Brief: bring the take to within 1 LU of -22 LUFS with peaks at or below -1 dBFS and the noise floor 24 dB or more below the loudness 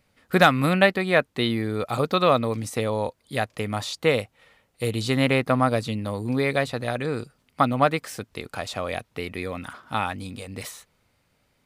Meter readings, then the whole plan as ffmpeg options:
loudness -24.0 LUFS; peak -4.0 dBFS; loudness target -22.0 LUFS
-> -af "volume=2dB"

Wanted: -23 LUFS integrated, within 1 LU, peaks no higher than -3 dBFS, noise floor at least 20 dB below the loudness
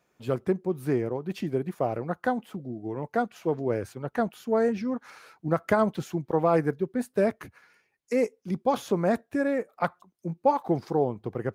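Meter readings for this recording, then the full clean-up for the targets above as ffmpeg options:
loudness -28.5 LUFS; peak -10.5 dBFS; loudness target -23.0 LUFS
-> -af "volume=5.5dB"

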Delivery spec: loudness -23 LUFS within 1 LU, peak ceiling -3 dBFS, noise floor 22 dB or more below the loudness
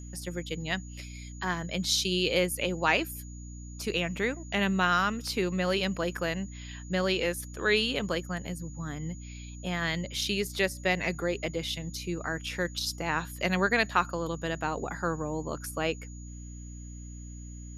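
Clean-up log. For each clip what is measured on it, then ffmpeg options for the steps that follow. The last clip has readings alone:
hum 60 Hz; harmonics up to 300 Hz; hum level -40 dBFS; steady tone 6800 Hz; tone level -51 dBFS; loudness -30.0 LUFS; peak -9.0 dBFS; loudness target -23.0 LUFS
-> -af "bandreject=f=60:t=h:w=4,bandreject=f=120:t=h:w=4,bandreject=f=180:t=h:w=4,bandreject=f=240:t=h:w=4,bandreject=f=300:t=h:w=4"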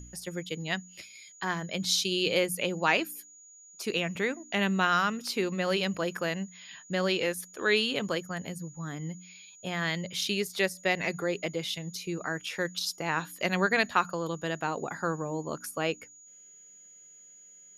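hum none; steady tone 6800 Hz; tone level -51 dBFS
-> -af "bandreject=f=6.8k:w=30"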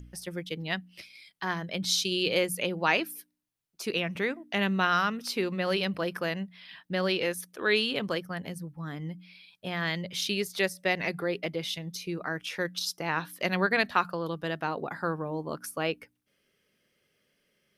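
steady tone none; loudness -30.0 LUFS; peak -9.0 dBFS; loudness target -23.0 LUFS
-> -af "volume=7dB,alimiter=limit=-3dB:level=0:latency=1"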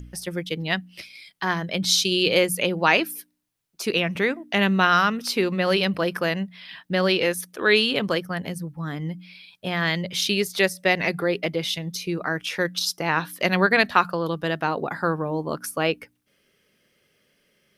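loudness -23.0 LUFS; peak -3.0 dBFS; noise floor -67 dBFS

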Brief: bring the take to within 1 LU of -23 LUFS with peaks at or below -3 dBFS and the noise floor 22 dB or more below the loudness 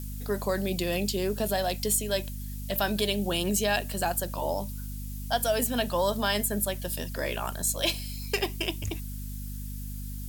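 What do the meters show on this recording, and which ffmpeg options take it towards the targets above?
hum 50 Hz; harmonics up to 250 Hz; hum level -34 dBFS; noise floor -36 dBFS; noise floor target -52 dBFS; loudness -29.5 LUFS; peak -12.0 dBFS; loudness target -23.0 LUFS
-> -af "bandreject=f=50:t=h:w=4,bandreject=f=100:t=h:w=4,bandreject=f=150:t=h:w=4,bandreject=f=200:t=h:w=4,bandreject=f=250:t=h:w=4"
-af "afftdn=nr=16:nf=-36"
-af "volume=6.5dB"

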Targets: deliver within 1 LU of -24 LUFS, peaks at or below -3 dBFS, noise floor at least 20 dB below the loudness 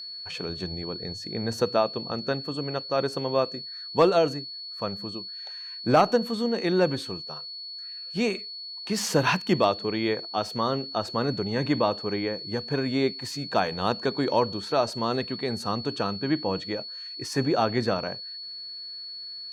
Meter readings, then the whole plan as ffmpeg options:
steady tone 4400 Hz; tone level -36 dBFS; loudness -27.5 LUFS; peak -9.5 dBFS; loudness target -24.0 LUFS
-> -af "bandreject=f=4.4k:w=30"
-af "volume=3.5dB"

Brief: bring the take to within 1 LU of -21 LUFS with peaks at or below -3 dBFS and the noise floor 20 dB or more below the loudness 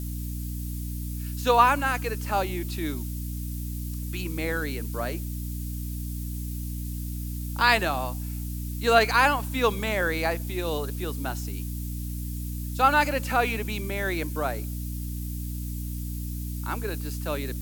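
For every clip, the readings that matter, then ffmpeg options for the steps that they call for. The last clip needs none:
hum 60 Hz; harmonics up to 300 Hz; hum level -30 dBFS; noise floor -33 dBFS; noise floor target -48 dBFS; loudness -27.5 LUFS; peak -5.5 dBFS; loudness target -21.0 LUFS
-> -af "bandreject=f=60:t=h:w=6,bandreject=f=120:t=h:w=6,bandreject=f=180:t=h:w=6,bandreject=f=240:t=h:w=6,bandreject=f=300:t=h:w=6"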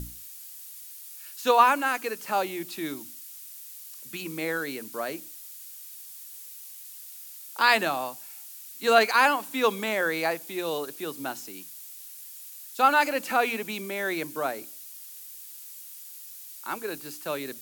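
hum none; noise floor -44 dBFS; noise floor target -47 dBFS
-> -af "afftdn=nr=6:nf=-44"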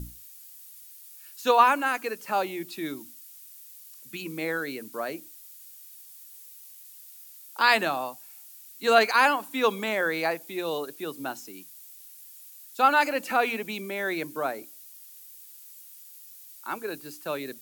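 noise floor -49 dBFS; loudness -26.5 LUFS; peak -5.5 dBFS; loudness target -21.0 LUFS
-> -af "volume=5.5dB,alimiter=limit=-3dB:level=0:latency=1"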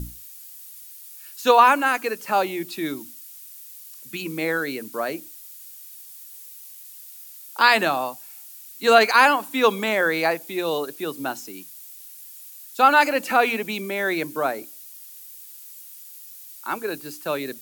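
loudness -21.0 LUFS; peak -3.0 dBFS; noise floor -43 dBFS

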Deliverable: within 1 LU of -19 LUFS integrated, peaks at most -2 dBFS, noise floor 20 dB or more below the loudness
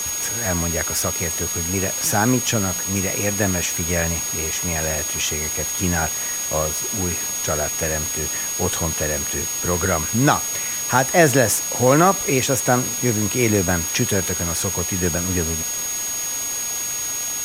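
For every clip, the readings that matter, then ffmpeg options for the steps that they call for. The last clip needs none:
steady tone 6600 Hz; tone level -24 dBFS; noise floor -26 dBFS; noise floor target -40 dBFS; loudness -20.0 LUFS; peak -1.5 dBFS; loudness target -19.0 LUFS
-> -af "bandreject=f=6.6k:w=30"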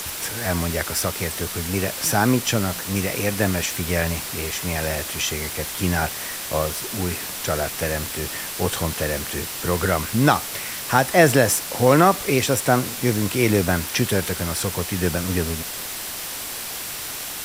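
steady tone none; noise floor -31 dBFS; noise floor target -42 dBFS
-> -af "afftdn=nr=11:nf=-31"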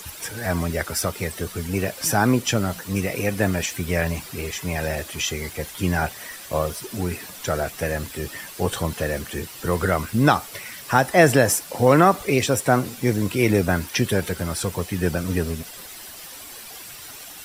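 noise floor -40 dBFS; noise floor target -43 dBFS
-> -af "afftdn=nr=6:nf=-40"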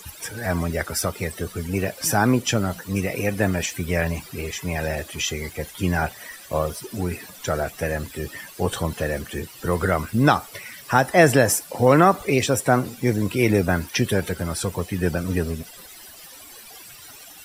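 noise floor -44 dBFS; loudness -23.0 LUFS; peak -2.5 dBFS; loudness target -19.0 LUFS
-> -af "volume=4dB,alimiter=limit=-2dB:level=0:latency=1"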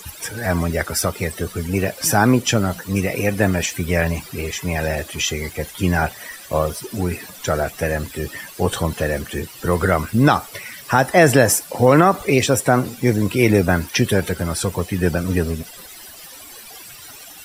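loudness -19.5 LUFS; peak -2.0 dBFS; noise floor -40 dBFS

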